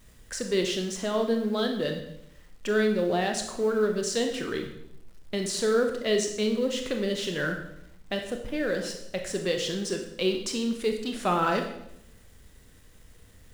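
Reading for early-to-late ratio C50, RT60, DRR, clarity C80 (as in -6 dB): 7.0 dB, 0.75 s, 4.0 dB, 10.0 dB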